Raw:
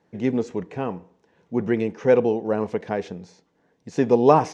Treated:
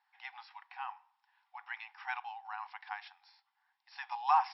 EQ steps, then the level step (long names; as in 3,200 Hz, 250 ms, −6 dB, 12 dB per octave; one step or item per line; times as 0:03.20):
linear-phase brick-wall band-pass 740–5,600 Hz
−6.5 dB